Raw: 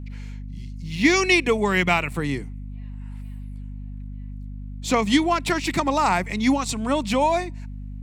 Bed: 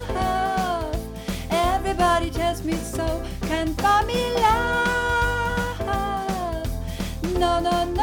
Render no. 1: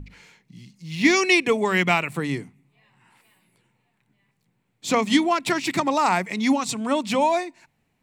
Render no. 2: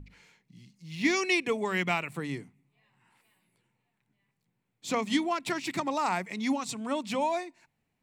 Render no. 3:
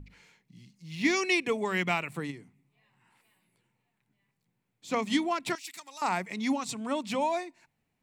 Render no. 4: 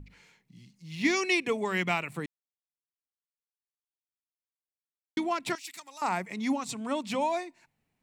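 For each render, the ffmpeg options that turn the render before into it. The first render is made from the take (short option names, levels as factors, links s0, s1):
-af "bandreject=f=50:t=h:w=6,bandreject=f=100:t=h:w=6,bandreject=f=150:t=h:w=6,bandreject=f=200:t=h:w=6,bandreject=f=250:t=h:w=6"
-af "volume=0.376"
-filter_complex "[0:a]asplit=3[s0][s1][s2];[s0]afade=t=out:st=2.3:d=0.02[s3];[s1]acompressor=threshold=0.00158:ratio=1.5:attack=3.2:release=140:knee=1:detection=peak,afade=t=in:st=2.3:d=0.02,afade=t=out:st=4.91:d=0.02[s4];[s2]afade=t=in:st=4.91:d=0.02[s5];[s3][s4][s5]amix=inputs=3:normalize=0,asettb=1/sr,asplit=3[s6][s7][s8];[s6]atrim=end=5.554[s9];[s7]atrim=start=5.55:end=6.02,asetpts=PTS-STARTPTS,afade=t=in:d=0.004:c=qsin,afade=t=out:st=0.466:d=0.004:c=qsin,aderivative[s10];[s8]atrim=start=6.016[s11];[s9][s10]acrossfade=d=0.004:c1=hsin:c2=qsin[s12];[s12][s11]acrossfade=d=0.004:c1=qsin:c2=hsin"
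-filter_complex "[0:a]asettb=1/sr,asplit=3[s0][s1][s2];[s0]atrim=end=5.824[s3];[s1]atrim=start=5.82:end=6.7,asetpts=PTS-STARTPTS,afade=t=in:d=0.004:c=qsin,afade=t=out:st=0.876:d=0.004:c=qsin,equalizer=f=4000:t=o:w=1.6:g=-3.5[s4];[s2]atrim=start=6.696[s5];[s3][s4]acrossfade=d=0.004:c1=hsin:c2=qsin[s6];[s6][s5]acrossfade=d=0.004:c1=qsin:c2=hsin,asplit=3[s7][s8][s9];[s7]atrim=end=2.26,asetpts=PTS-STARTPTS,afade=t=out:st=2.256:d=0.004:c=hsin[s10];[s8]atrim=start=2.26:end=5.17,asetpts=PTS-STARTPTS,volume=0[s11];[s9]atrim=start=5.17,asetpts=PTS-STARTPTS,afade=t=in:d=0.004:c=hsin[s12];[s10][s11][s12]concat=n=3:v=0:a=1"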